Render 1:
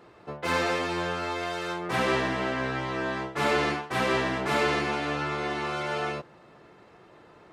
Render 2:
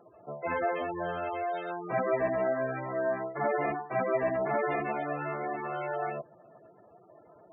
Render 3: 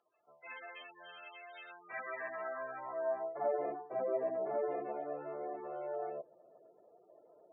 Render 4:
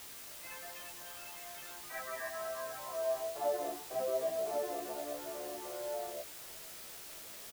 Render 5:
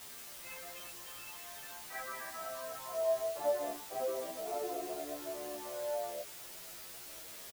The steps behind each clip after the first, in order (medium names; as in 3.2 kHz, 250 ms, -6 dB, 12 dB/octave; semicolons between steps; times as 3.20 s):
spectral gate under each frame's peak -10 dB strong; peaking EQ 660 Hz +13.5 dB 0.29 oct; trim -5 dB
band-pass sweep 3.1 kHz -> 500 Hz, 1.41–3.66 s; trim -2 dB
word length cut 8-bit, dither triangular; doubling 17 ms -5.5 dB; trim -2 dB
endless flanger 9.7 ms +0.49 Hz; trim +3 dB